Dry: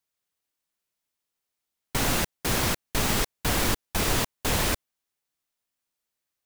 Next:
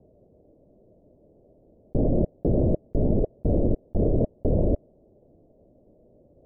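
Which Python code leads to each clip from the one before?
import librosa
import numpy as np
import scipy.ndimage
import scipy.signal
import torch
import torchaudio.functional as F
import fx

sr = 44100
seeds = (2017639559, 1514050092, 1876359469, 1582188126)

y = scipy.signal.sosfilt(scipy.signal.cheby1(5, 1.0, 620.0, 'lowpass', fs=sr, output='sos'), x)
y = fx.env_flatten(y, sr, amount_pct=100)
y = y * 10.0 ** (3.0 / 20.0)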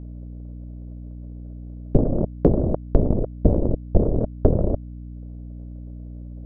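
y = fx.transient(x, sr, attack_db=12, sustain_db=-9)
y = fx.add_hum(y, sr, base_hz=60, snr_db=13)
y = y * 10.0 ** (-1.5 / 20.0)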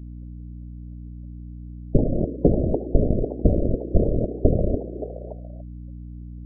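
y = fx.echo_stepped(x, sr, ms=286, hz=350.0, octaves=0.7, feedback_pct=70, wet_db=-6.0)
y = fx.spec_gate(y, sr, threshold_db=-25, keep='strong')
y = y * 10.0 ** (-1.0 / 20.0)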